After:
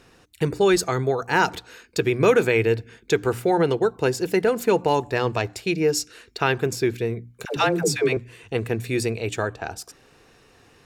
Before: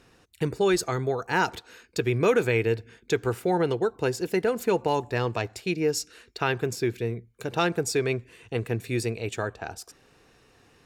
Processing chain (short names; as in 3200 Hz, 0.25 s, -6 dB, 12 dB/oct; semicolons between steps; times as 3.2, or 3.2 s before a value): notches 60/120/180/240/300 Hz; 7.45–8.17 dispersion lows, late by 0.116 s, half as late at 470 Hz; gain +4.5 dB